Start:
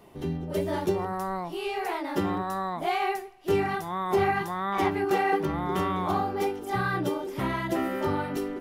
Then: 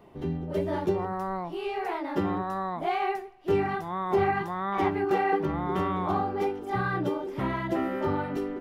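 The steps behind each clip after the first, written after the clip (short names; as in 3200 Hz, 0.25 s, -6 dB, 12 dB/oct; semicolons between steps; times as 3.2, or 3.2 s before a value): bell 12000 Hz -13.5 dB 2.2 oct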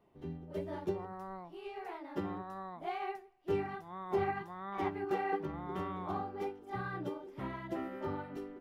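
upward expander 1.5:1, over -37 dBFS; gain -7.5 dB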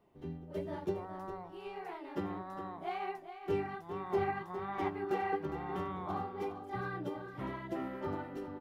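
echo 0.409 s -10 dB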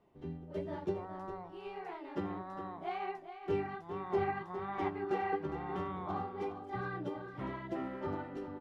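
air absorption 57 m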